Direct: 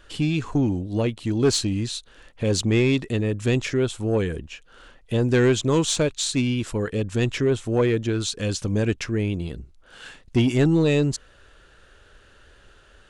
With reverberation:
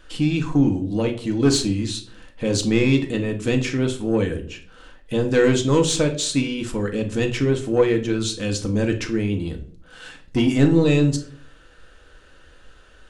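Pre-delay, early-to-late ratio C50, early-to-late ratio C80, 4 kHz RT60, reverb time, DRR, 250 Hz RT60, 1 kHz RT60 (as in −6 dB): 3 ms, 12.0 dB, 17.0 dB, 0.35 s, 0.50 s, 3.0 dB, 0.75 s, 0.40 s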